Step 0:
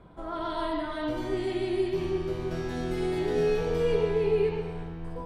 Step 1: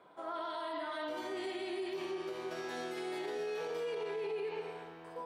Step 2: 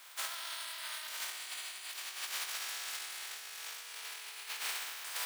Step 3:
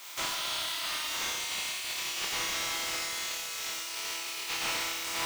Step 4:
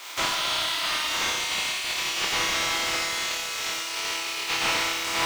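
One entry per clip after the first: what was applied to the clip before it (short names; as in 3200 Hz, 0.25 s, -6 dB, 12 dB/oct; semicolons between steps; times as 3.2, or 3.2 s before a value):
HPF 500 Hz 12 dB/oct; limiter -30 dBFS, peak gain reduction 11 dB; gain -1.5 dB
spectral contrast lowered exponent 0.29; HPF 1300 Hz 12 dB/oct; negative-ratio compressor -45 dBFS, ratio -0.5; gain +4 dB
thirty-one-band EQ 315 Hz +11 dB, 1600 Hz -8 dB, 6300 Hz +4 dB, 10000 Hz -5 dB; flutter echo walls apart 5.2 m, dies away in 0.49 s; slew limiter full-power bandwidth 52 Hz; gain +8 dB
high shelf 7400 Hz -10.5 dB; gain +9 dB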